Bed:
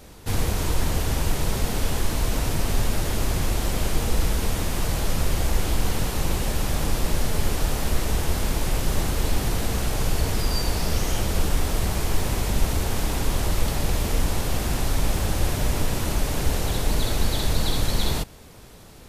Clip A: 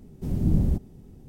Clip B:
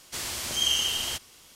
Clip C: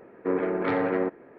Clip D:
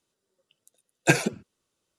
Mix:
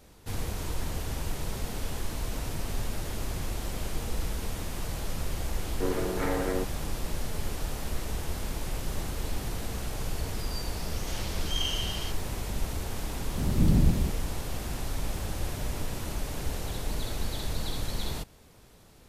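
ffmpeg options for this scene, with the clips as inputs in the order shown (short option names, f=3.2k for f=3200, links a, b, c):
-filter_complex "[0:a]volume=-9.5dB[a];[2:a]lowpass=f=5.9k:w=0.5412,lowpass=f=5.9k:w=1.3066[b];[1:a]aecho=1:1:179:0.708[c];[3:a]atrim=end=1.38,asetpts=PTS-STARTPTS,volume=-5dB,afade=t=in:d=0.004:c=hsin,afade=t=out:st=1.376:d=0.004:c=hsin,adelay=5550[d];[b]atrim=end=1.55,asetpts=PTS-STARTPTS,volume=-7dB,afade=t=in:d=0.004:c=hsin,afade=t=out:st=1.546:d=0.004:c=hsin,adelay=10940[e];[c]atrim=end=1.28,asetpts=PTS-STARTPTS,volume=-1.5dB,afade=t=in:d=0.004:c=hsin,afade=t=out:st=1.276:d=0.004:c=hsin,adelay=13150[f];[a][d][e][f]amix=inputs=4:normalize=0"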